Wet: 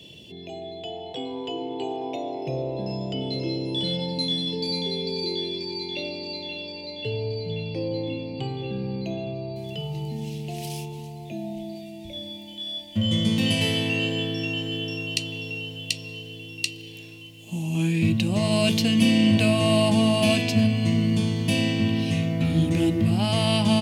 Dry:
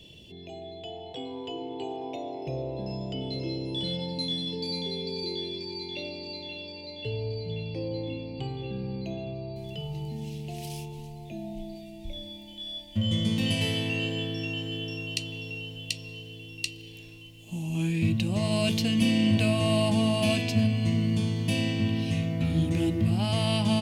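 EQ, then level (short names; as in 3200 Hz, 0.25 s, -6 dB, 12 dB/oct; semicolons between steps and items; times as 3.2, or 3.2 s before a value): HPF 110 Hz; +5.0 dB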